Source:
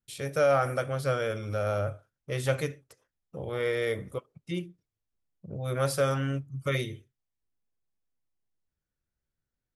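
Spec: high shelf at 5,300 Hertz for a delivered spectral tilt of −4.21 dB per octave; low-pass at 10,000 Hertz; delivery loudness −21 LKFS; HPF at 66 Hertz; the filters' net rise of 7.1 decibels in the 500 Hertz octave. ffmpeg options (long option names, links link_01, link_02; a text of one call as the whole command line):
ffmpeg -i in.wav -af "highpass=66,lowpass=10000,equalizer=frequency=500:width_type=o:gain=8,highshelf=frequency=5300:gain=-7.5,volume=4dB" out.wav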